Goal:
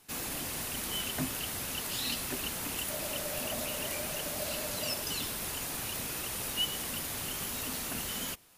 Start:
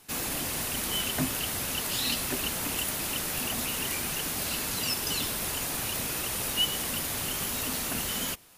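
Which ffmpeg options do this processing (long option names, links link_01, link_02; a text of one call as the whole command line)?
ffmpeg -i in.wav -filter_complex "[0:a]asettb=1/sr,asplit=3[link_01][link_02][link_03];[link_01]atrim=end=2.904[link_04];[link_02]atrim=start=2.9:end=5.02,asetpts=PTS-STARTPTS,afade=type=in:duration=0.004:curve=qsin,afade=type=out:start_time=2.116:duration=0.004:curve=qsin,equalizer=frequency=600:width_type=o:width=0.26:gain=15[link_05];[link_03]atrim=start=5.016[link_06];[link_04][link_05]acrossfade=duration=0.004:curve1=hsin:curve2=qsin[link_07];[link_07][link_06]acrossfade=duration=0.004:curve1=qsin:curve2=hsin,volume=-5dB" out.wav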